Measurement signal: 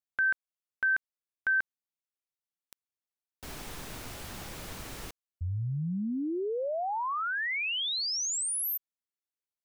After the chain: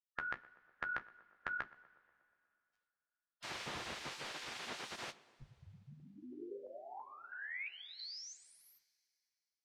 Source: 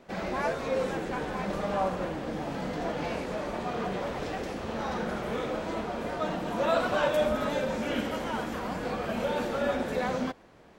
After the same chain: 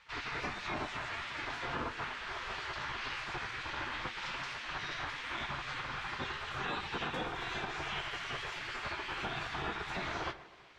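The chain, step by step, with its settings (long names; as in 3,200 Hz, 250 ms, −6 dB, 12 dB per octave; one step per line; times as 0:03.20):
flanger 1.5 Hz, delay 7 ms, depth 9 ms, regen −32%
mains-hum notches 50/100/150/200/250/300/350/400 Hz
gate on every frequency bin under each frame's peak −15 dB weak
on a send: tape delay 122 ms, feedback 72%, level −20 dB, low-pass 1,600 Hz
on the sum: downward compressor 3 to 1, threshold −43 dBFS
coupled-rooms reverb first 0.22 s, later 2.7 s, from −18 dB, DRR 14 dB
in parallel at +0.5 dB: speech leveller within 3 dB 0.5 s
on the sum: low-pass filter 4,600 Hz 12 dB per octave
level +2 dB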